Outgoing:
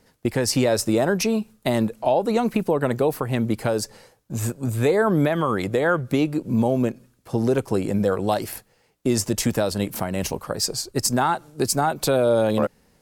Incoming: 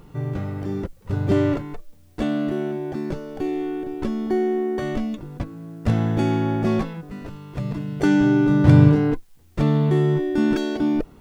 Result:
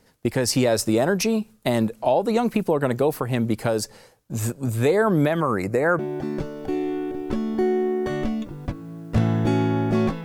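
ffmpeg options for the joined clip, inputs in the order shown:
-filter_complex "[0:a]asettb=1/sr,asplit=3[a][b][c];[a]atrim=end=5.404[d];[b]atrim=start=5.4:end=5.99,asetpts=PTS-STARTPTS,afade=t=in:d=0.004:c=qsin,afade=t=out:st=0.586:d=0.004:c=qsin,asuperstop=centerf=3300:order=4:qfactor=1.9[e];[c]atrim=start=5.986[f];[d][e]acrossfade=d=0.004:c1=hsin:c2=qsin[g];[g][f]acrossfade=d=0.004:c1=qsin:c2=hsin,apad=whole_dur=10.24,atrim=end=10.24,atrim=end=5.992[h];[1:a]atrim=start=2.708:end=6.96[i];[h][i]acrossfade=d=0.004:c1=hsin:c2=hsin"

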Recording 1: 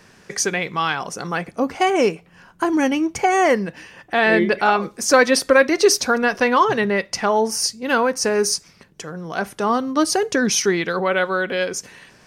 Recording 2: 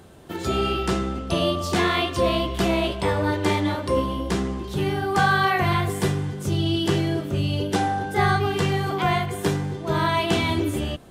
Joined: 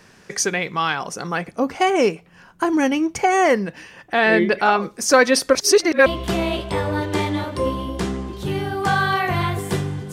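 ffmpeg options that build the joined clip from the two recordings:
-filter_complex "[0:a]apad=whole_dur=10.12,atrim=end=10.12,asplit=2[a][b];[a]atrim=end=5.552[c];[b]atrim=start=5.548:end=6.062,asetpts=PTS-STARTPTS,areverse[d];[1:a]atrim=start=2.368:end=6.43[e];[c][d]acrossfade=d=0.004:c1=hsin:c2=hsin[f];[f][e]acrossfade=d=0.004:c1=hsin:c2=hsin"

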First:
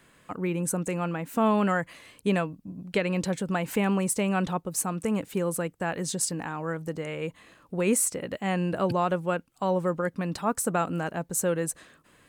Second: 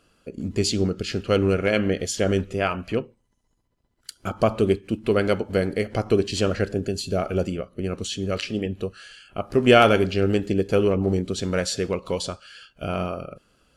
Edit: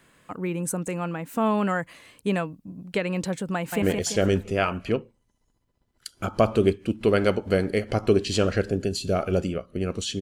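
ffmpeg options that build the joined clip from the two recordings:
-filter_complex "[0:a]apad=whole_dur=10.21,atrim=end=10.21,atrim=end=3.822[a];[1:a]atrim=start=1.848:end=8.24[b];[a][b]acrossfade=d=0.004:c1=hsin:c2=hsin,asplit=2[c][d];[d]afade=t=in:st=3.55:d=0.01,afade=t=out:st=3.82:d=0.01,aecho=0:1:170|340|510|680|850|1020:0.630957|0.283931|0.127769|0.057496|0.0258732|0.0116429[e];[c][e]amix=inputs=2:normalize=0"

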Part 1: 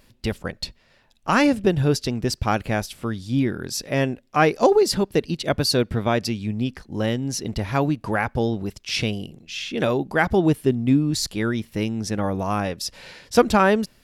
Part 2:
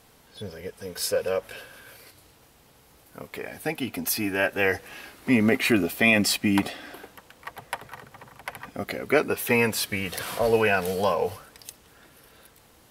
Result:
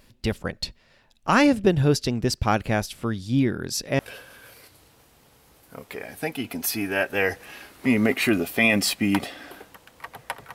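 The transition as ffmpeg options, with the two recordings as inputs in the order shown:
-filter_complex "[0:a]apad=whole_dur=10.54,atrim=end=10.54,atrim=end=3.992[a];[1:a]atrim=start=1.418:end=7.97[b];[a][b]acrossfade=d=0.004:c1=hsin:c2=hsin"

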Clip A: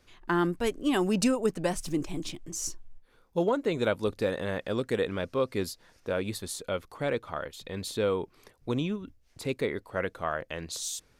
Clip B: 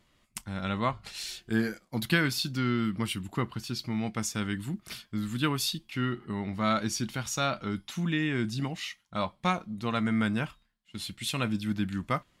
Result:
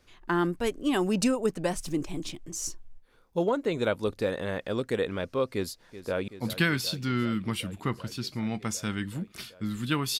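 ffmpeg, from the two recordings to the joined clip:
-filter_complex "[0:a]apad=whole_dur=10.19,atrim=end=10.19,atrim=end=6.282[a];[1:a]atrim=start=1.798:end=5.71[b];[a][b]acrossfade=d=0.004:c1=hsin:c2=hsin,asplit=2[c][d];[d]afade=t=in:st=5.53:d=0.01,afade=t=out:st=6.28:d=0.01,aecho=0:1:380|760|1140|1520|1900|2280|2660|3040|3420|3800|4180|4560:0.199526|0.169597|0.144158|0.122534|0.104154|0.0885308|0.0752512|0.0639635|0.054369|0.0462137|0.0392816|0.0333894[e];[c][e]amix=inputs=2:normalize=0"

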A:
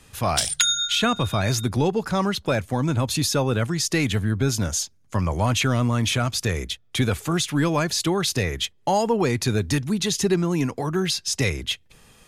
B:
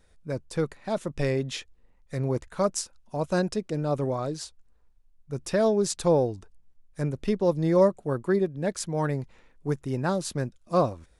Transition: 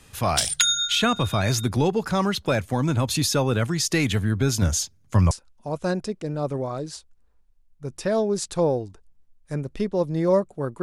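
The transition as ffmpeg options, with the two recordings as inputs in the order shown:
-filter_complex "[0:a]asettb=1/sr,asplit=3[a][b][c];[a]atrim=end=4.624[d];[b]atrim=start=4.62:end=5.31,asetpts=PTS-STARTPTS,afade=t=in:d=0.004:c=qsin,afade=t=out:st=0.686:d=0.004:c=qsin,equalizer=f=85:w=0.52:g=7[e];[c]atrim=start=5.306[f];[d][e]acrossfade=d=0.004:c1=hsin:c2=qsin[g];[g][f]acrossfade=d=0.004:c1=qsin:c2=hsin,apad=whole_dur=10.82,atrim=end=10.82,atrim=end=5.312[h];[1:a]atrim=start=2.788:end=8.3[i];[h][i]acrossfade=d=0.004:c1=hsin:c2=hsin"

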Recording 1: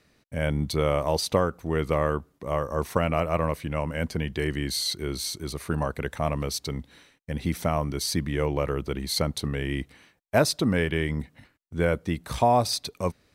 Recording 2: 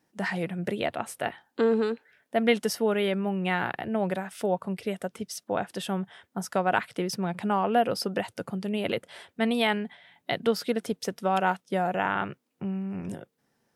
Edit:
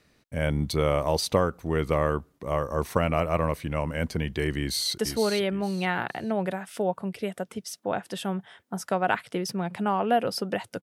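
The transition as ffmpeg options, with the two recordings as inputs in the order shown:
-filter_complex "[0:a]apad=whole_dur=10.82,atrim=end=10.82,atrim=end=4.982[a];[1:a]atrim=start=2.618:end=8.46[b];[a][b]acrossfade=d=0.004:c1=hsin:c2=hsin,asplit=2[c][d];[d]afade=t=in:st=4.59:d=0.01,afade=t=out:st=4.98:d=0.01,aecho=0:1:460|920|1380:0.446684|0.111671|0.0279177[e];[c][e]amix=inputs=2:normalize=0"

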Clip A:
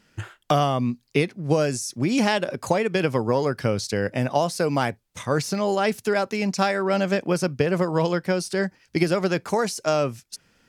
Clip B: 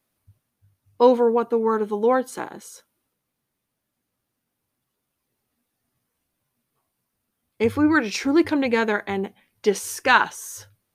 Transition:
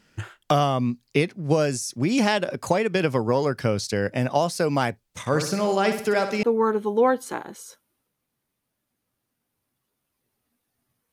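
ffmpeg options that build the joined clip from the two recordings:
-filter_complex "[0:a]asettb=1/sr,asplit=3[a][b][c];[a]atrim=end=5.204[d];[b]atrim=start=5.2:end=6.43,asetpts=PTS-STARTPTS,afade=t=in:d=0.004:c=qsin,afade=t=out:st=1.226:d=0.004:c=qsin,aecho=1:1:62|124|186|248|310:0.376|0.177|0.083|0.039|0.0183,atrim=end_sample=54243[e];[c]atrim=start=6.426[f];[d][e]acrossfade=d=0.004:c1=hsin:c2=qsin[g];[g][f]acrossfade=d=0.004:c1=qsin:c2=hsin,apad=whole_dur=11.12,atrim=end=11.12,atrim=end=6.432[h];[1:a]atrim=start=1.488:end=6.18[i];[h][i]acrossfade=d=0.004:c1=hsin:c2=hsin"

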